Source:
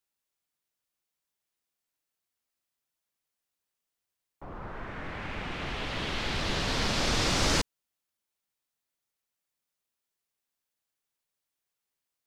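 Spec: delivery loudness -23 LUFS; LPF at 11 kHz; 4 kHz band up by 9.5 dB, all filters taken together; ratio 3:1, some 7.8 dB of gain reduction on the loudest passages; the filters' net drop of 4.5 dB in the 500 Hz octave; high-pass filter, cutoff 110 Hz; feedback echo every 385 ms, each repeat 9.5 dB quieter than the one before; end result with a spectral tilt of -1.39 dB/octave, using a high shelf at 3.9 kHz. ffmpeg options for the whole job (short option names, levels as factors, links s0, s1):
-af "highpass=110,lowpass=11000,equalizer=f=500:t=o:g=-6,highshelf=f=3900:g=4.5,equalizer=f=4000:t=o:g=9,acompressor=threshold=0.0355:ratio=3,aecho=1:1:385|770|1155|1540:0.335|0.111|0.0365|0.012,volume=2.11"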